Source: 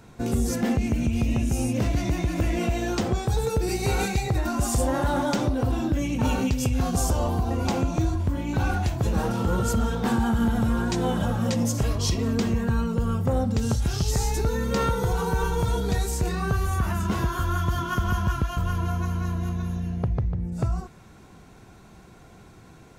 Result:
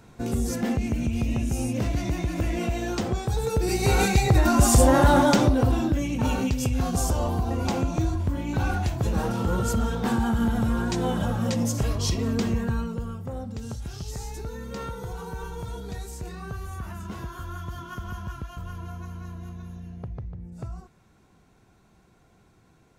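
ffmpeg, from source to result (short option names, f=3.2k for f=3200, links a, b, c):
-af "volume=7dB,afade=t=in:st=3.39:d=1.16:silence=0.354813,afade=t=out:st=5.11:d=0.93:silence=0.398107,afade=t=out:st=12.56:d=0.6:silence=0.334965"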